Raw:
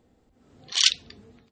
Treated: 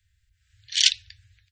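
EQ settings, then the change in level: Chebyshev band-stop 110–1600 Hz, order 5; +1.5 dB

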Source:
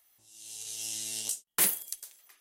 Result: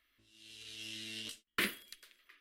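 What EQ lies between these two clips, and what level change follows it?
distance through air 430 m; peaking EQ 470 Hz -11 dB 1.3 oct; static phaser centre 340 Hz, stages 4; +10.0 dB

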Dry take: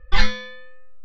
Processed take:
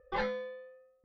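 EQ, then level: band-pass filter 520 Hz, Q 2; +2.0 dB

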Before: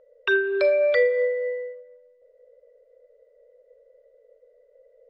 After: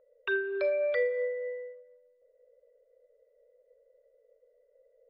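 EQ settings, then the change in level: low-pass 3.5 kHz 12 dB/octave; -8.5 dB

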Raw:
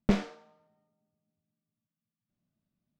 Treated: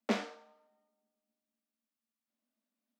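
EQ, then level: steep high-pass 220 Hz 96 dB/octave; peaking EQ 350 Hz -10 dB 0.42 oct; 0.0 dB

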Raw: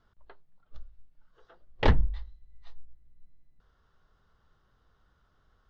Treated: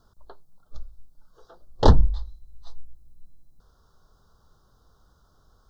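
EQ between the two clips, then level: Butterworth band-stop 2.3 kHz, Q 0.77; treble shelf 3.1 kHz +9.5 dB; +7.5 dB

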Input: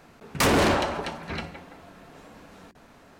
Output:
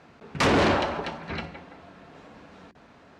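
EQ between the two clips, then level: high-pass 53 Hz; low-pass 4.9 kHz 12 dB/octave; 0.0 dB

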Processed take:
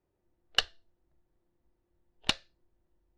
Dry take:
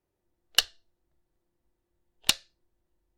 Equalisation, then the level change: tape spacing loss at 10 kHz 22 dB; +3.0 dB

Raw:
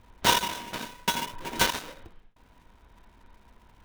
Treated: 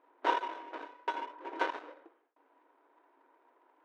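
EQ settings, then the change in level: brick-wall FIR high-pass 270 Hz; low-pass 1.4 kHz 12 dB/octave; -4.0 dB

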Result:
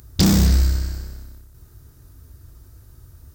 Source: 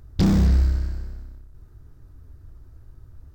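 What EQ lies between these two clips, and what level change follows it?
high-pass 42 Hz; treble shelf 2.6 kHz +8 dB; treble shelf 5.3 kHz +11 dB; +2.5 dB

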